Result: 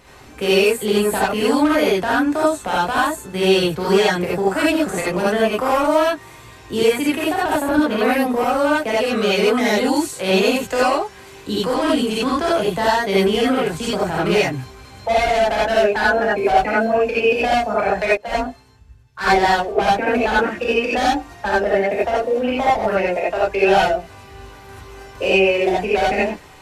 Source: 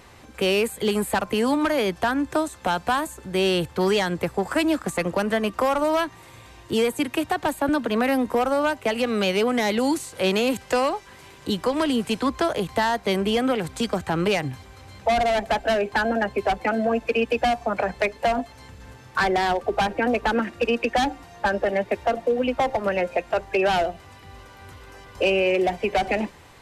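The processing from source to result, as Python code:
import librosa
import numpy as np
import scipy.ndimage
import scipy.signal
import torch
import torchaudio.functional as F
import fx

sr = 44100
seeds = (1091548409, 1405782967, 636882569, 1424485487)

y = fx.rev_gated(x, sr, seeds[0], gate_ms=110, shape='rising', drr_db=-7.0)
y = fx.band_widen(y, sr, depth_pct=100, at=(18.17, 19.88))
y = y * 10.0 ** (-2.0 / 20.0)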